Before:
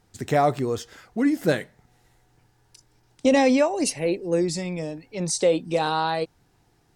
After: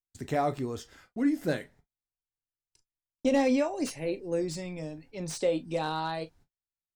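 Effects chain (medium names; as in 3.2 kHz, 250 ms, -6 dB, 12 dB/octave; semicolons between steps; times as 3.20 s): gate -49 dBFS, range -39 dB; bass shelf 85 Hz +9.5 dB; on a send at -9.5 dB: reverberation, pre-delay 3 ms; on the sum: slew-rate limiter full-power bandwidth 270 Hz; trim -8.5 dB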